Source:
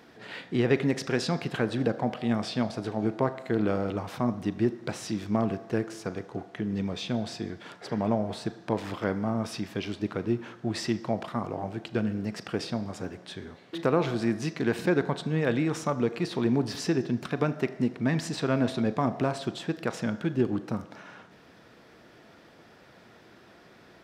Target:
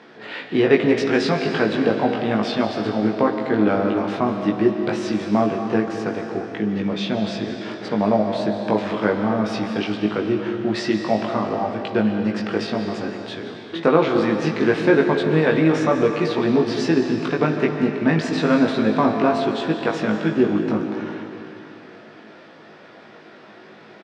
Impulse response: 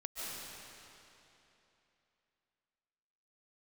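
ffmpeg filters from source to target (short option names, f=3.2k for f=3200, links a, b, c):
-filter_complex "[0:a]highpass=190,lowpass=4.1k,asplit=2[a][b];[b]adelay=19,volume=-3dB[c];[a][c]amix=inputs=2:normalize=0,asplit=2[d][e];[1:a]atrim=start_sample=2205[f];[e][f]afir=irnorm=-1:irlink=0,volume=-3dB[g];[d][g]amix=inputs=2:normalize=0,volume=4.5dB"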